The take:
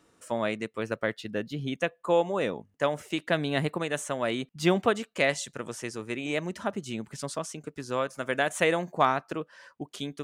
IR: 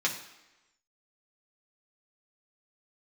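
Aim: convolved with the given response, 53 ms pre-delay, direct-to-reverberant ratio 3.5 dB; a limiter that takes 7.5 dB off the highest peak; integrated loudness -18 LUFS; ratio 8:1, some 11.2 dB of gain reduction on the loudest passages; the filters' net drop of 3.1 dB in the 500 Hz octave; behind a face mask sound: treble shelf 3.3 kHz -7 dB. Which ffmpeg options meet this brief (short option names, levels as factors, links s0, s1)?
-filter_complex "[0:a]equalizer=f=500:t=o:g=-3.5,acompressor=threshold=0.0282:ratio=8,alimiter=level_in=1.26:limit=0.0631:level=0:latency=1,volume=0.794,asplit=2[s0][s1];[1:a]atrim=start_sample=2205,adelay=53[s2];[s1][s2]afir=irnorm=-1:irlink=0,volume=0.251[s3];[s0][s3]amix=inputs=2:normalize=0,highshelf=f=3300:g=-7,volume=10.6"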